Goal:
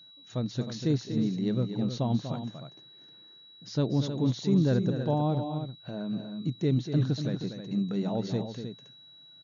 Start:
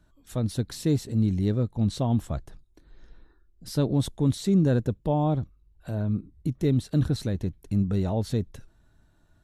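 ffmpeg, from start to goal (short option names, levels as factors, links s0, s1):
-af "afftfilt=real='re*between(b*sr/4096,110,7000)':imag='im*between(b*sr/4096,110,7000)':win_size=4096:overlap=0.75,aecho=1:1:242|313:0.355|0.335,aeval=exprs='val(0)+0.00398*sin(2*PI*3900*n/s)':c=same,volume=0.708"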